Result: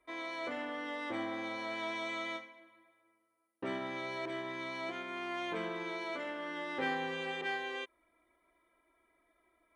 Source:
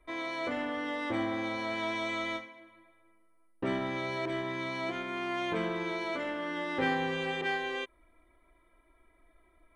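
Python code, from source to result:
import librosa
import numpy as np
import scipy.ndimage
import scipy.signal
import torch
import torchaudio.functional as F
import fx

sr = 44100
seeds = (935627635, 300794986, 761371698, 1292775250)

y = fx.highpass(x, sr, hz=290.0, slope=6)
y = y * librosa.db_to_amplitude(-4.0)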